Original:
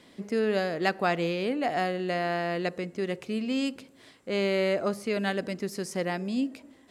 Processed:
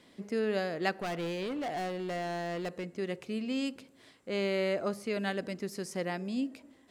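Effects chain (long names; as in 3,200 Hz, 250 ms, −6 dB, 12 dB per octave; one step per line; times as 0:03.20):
0:00.93–0:02.94: hard clipping −27.5 dBFS, distortion −14 dB
level −4.5 dB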